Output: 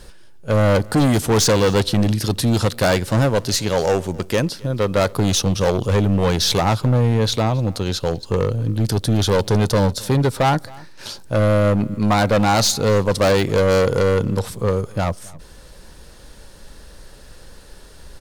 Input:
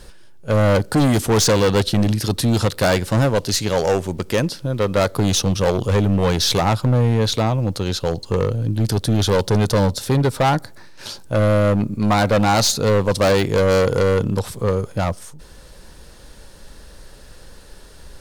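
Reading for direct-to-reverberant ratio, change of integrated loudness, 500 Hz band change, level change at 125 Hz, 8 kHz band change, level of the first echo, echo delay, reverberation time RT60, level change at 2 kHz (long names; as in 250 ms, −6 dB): no reverb audible, 0.0 dB, 0.0 dB, 0.0 dB, 0.0 dB, −23.5 dB, 268 ms, no reverb audible, 0.0 dB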